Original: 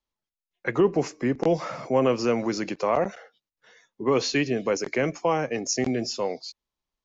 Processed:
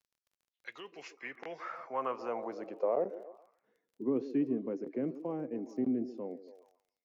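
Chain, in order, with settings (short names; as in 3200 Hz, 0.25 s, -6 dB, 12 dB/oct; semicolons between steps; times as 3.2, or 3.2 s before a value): delay with a stepping band-pass 0.139 s, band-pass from 360 Hz, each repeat 0.7 oct, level -11 dB; band-pass sweep 5300 Hz -> 270 Hz, 0.35–3.55; crackle 18/s -54 dBFS; gain -3.5 dB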